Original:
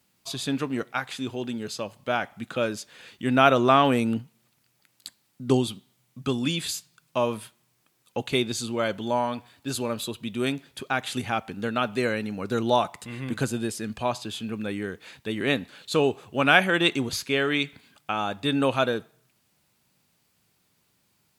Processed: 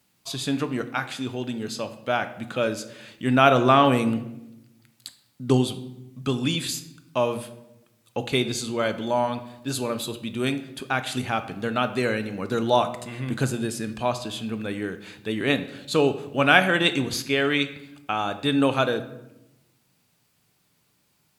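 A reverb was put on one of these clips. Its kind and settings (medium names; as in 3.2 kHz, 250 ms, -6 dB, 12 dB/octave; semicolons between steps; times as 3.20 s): simulated room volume 330 m³, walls mixed, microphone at 0.37 m; trim +1 dB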